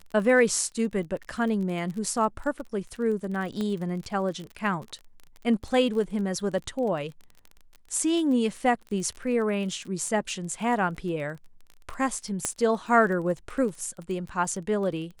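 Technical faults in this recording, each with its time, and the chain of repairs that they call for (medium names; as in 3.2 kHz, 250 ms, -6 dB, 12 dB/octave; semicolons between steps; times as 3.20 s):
crackle 26 per s -34 dBFS
3.61 s: pop -19 dBFS
12.45 s: pop -12 dBFS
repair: de-click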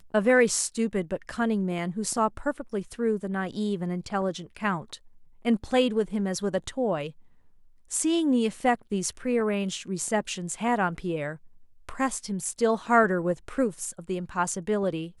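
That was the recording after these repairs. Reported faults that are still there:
nothing left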